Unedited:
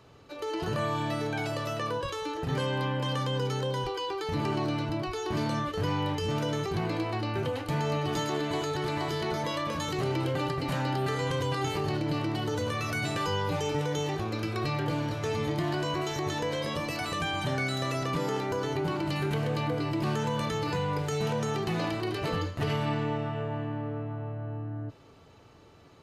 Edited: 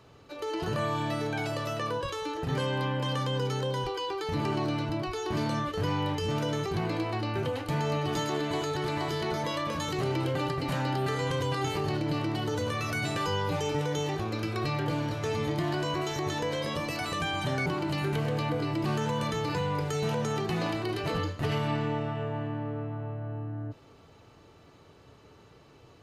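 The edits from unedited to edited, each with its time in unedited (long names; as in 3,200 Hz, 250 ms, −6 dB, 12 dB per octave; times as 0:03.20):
0:17.66–0:18.84: remove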